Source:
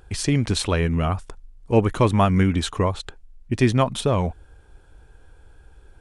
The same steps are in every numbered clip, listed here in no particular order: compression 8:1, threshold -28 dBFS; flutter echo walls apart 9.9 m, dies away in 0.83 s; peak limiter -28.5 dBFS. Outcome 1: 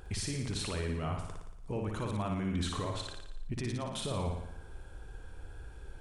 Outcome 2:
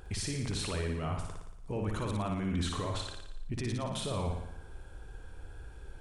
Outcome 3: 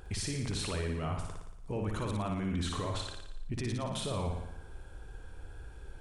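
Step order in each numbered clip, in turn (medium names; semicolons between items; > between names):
compression > peak limiter > flutter echo; peak limiter > compression > flutter echo; peak limiter > flutter echo > compression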